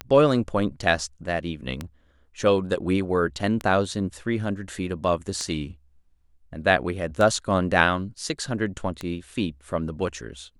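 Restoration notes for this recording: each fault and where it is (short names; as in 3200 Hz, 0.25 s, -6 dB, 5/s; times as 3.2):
tick 33 1/3 rpm -14 dBFS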